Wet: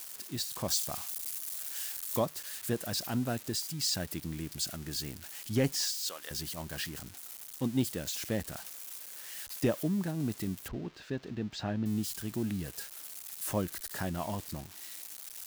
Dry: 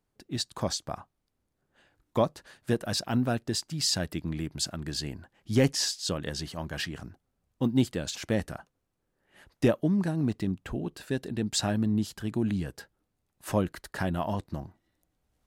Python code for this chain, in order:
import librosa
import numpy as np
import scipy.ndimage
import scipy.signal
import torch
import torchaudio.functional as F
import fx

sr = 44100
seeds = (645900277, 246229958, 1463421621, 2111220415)

y = x + 0.5 * 10.0 ** (-27.0 / 20.0) * np.diff(np.sign(x), prepend=np.sign(x[:1]))
y = fx.high_shelf(y, sr, hz=3800.0, db=7.0, at=(0.68, 2.19))
y = fx.highpass(y, sr, hz=780.0, slope=12, at=(5.81, 6.31))
y = fx.air_absorb(y, sr, metres=210.0, at=(10.68, 11.86))
y = y * 10.0 ** (-5.5 / 20.0)